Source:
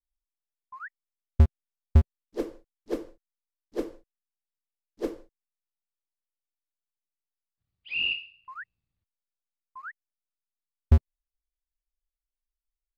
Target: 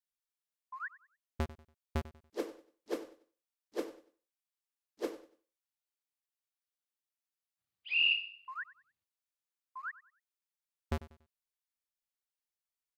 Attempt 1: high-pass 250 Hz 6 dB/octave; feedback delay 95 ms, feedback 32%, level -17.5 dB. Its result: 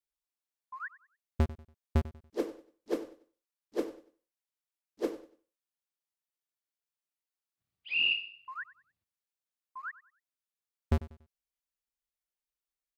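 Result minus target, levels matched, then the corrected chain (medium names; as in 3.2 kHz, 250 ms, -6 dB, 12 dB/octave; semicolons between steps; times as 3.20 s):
250 Hz band +4.0 dB
high-pass 720 Hz 6 dB/octave; feedback delay 95 ms, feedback 32%, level -17.5 dB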